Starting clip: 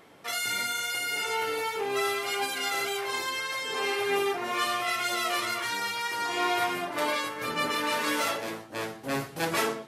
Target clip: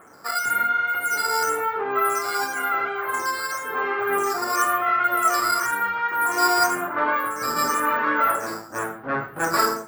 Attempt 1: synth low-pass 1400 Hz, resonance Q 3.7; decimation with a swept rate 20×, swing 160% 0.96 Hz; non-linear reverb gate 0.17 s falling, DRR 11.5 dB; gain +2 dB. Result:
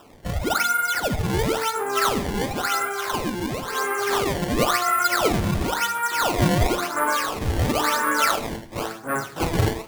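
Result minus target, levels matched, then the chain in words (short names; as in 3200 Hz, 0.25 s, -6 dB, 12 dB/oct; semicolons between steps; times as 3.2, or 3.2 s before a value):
decimation with a swept rate: distortion +17 dB
synth low-pass 1400 Hz, resonance Q 3.7; decimation with a swept rate 4×, swing 160% 0.96 Hz; non-linear reverb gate 0.17 s falling, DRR 11.5 dB; gain +2 dB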